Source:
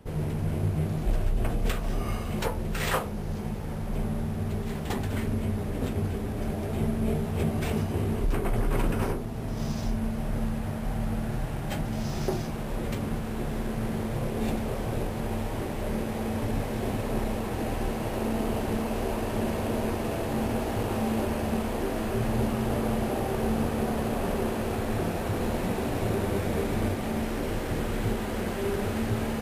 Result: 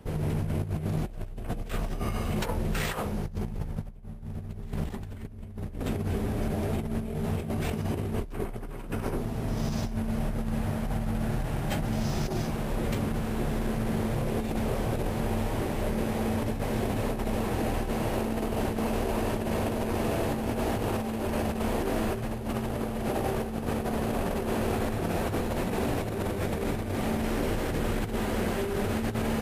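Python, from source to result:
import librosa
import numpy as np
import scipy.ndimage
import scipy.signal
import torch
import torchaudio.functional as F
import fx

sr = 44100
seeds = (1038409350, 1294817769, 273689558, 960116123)

y = fx.low_shelf(x, sr, hz=110.0, db=11.5, at=(3.26, 5.8))
y = fx.over_compress(y, sr, threshold_db=-29.0, ratio=-0.5)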